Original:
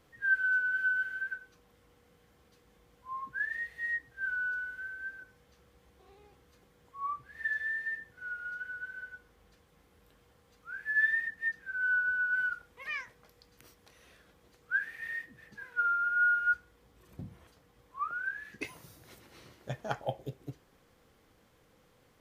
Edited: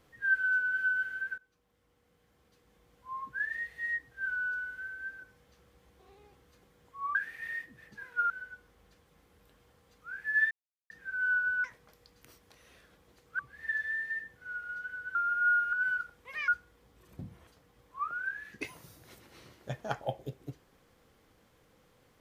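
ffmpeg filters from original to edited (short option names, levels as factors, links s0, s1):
-filter_complex "[0:a]asplit=11[s0][s1][s2][s3][s4][s5][s6][s7][s8][s9][s10];[s0]atrim=end=1.38,asetpts=PTS-STARTPTS,afade=t=out:st=1.376:d=0.004:c=hsin:silence=0.177828[s11];[s1]atrim=start=1.38:end=7.152,asetpts=PTS-STARTPTS,afade=t=in:d=1.84:silence=0.177828[s12];[s2]atrim=start=14.748:end=15.902[s13];[s3]atrim=start=8.908:end=11.12,asetpts=PTS-STARTPTS,afade=t=out:st=2.208:d=0.004:c=hsin[s14];[s4]atrim=start=11.12:end=11.51,asetpts=PTS-STARTPTS,volume=0[s15];[s5]atrim=start=11.51:end=12.252,asetpts=PTS-STARTPTS,afade=t=in:d=0.004:c=hsin[s16];[s6]atrim=start=12.998:end=14.752[s17];[s7]atrim=start=7.148:end=8.912[s18];[s8]atrim=start=15.898:end=16.482[s19];[s9]atrim=start=12.248:end=13.002[s20];[s10]atrim=start=16.478[s21];[s11][s12]concat=n=2:v=0:a=1[s22];[s22][s13]acrossfade=d=0.004:c1=hsin:c2=hsin[s23];[s14][s15][s16]concat=n=3:v=0:a=1[s24];[s23][s24]acrossfade=d=0.004:c1=hsin:c2=hsin[s25];[s25][s17]acrossfade=d=0.004:c1=hsin:c2=hsin[s26];[s26][s18]acrossfade=d=0.004:c1=hsin:c2=hsin[s27];[s27][s19]acrossfade=d=0.004:c1=hsin:c2=hsin[s28];[s28][s20]acrossfade=d=0.004:c1=hsin:c2=hsin[s29];[s29][s21]acrossfade=d=0.004:c1=hsin:c2=hsin"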